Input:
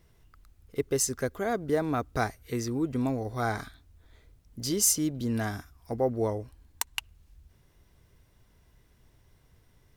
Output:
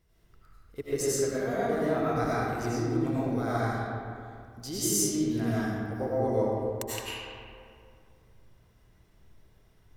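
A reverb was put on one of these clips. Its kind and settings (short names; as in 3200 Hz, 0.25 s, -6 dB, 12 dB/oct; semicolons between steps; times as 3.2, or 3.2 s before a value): digital reverb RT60 2.4 s, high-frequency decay 0.5×, pre-delay 60 ms, DRR -9 dB; gain -8.5 dB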